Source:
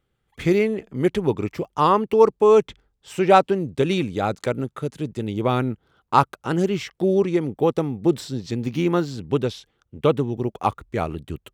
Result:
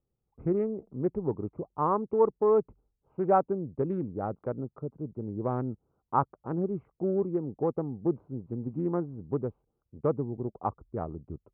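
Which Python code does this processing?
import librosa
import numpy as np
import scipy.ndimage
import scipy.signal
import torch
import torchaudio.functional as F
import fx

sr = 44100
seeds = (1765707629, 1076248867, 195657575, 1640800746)

y = fx.wiener(x, sr, points=25)
y = scipy.signal.sosfilt(scipy.signal.butter(4, 1300.0, 'lowpass', fs=sr, output='sos'), y)
y = y * librosa.db_to_amplitude(-8.5)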